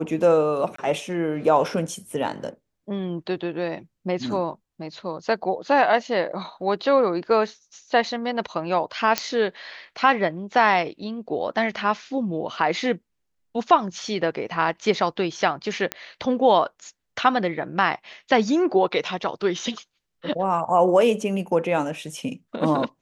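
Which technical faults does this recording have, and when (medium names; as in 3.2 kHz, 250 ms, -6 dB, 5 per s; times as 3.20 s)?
0.76–0.78 s: dropout 24 ms
9.18 s: pop -5 dBFS
15.92 s: pop -9 dBFS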